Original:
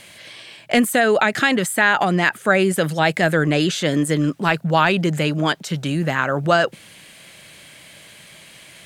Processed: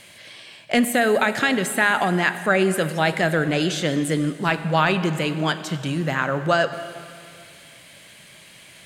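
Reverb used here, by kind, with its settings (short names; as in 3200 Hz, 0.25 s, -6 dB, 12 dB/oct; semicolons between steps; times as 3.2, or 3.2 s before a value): plate-style reverb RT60 2.3 s, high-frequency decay 0.95×, DRR 10 dB; gain -3 dB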